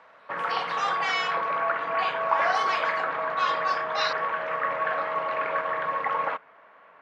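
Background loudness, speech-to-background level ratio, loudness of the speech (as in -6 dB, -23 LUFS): -27.5 LUFS, -3.5 dB, -31.0 LUFS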